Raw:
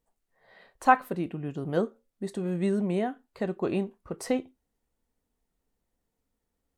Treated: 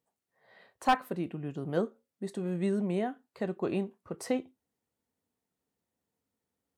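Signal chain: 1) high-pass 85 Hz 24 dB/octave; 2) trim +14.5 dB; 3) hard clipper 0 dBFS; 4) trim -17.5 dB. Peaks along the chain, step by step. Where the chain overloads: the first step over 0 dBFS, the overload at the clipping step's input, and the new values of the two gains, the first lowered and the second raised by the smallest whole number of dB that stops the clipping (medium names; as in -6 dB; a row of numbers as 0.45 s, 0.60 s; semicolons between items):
-5.5 dBFS, +9.0 dBFS, 0.0 dBFS, -17.5 dBFS; step 2, 9.0 dB; step 2 +5.5 dB, step 4 -8.5 dB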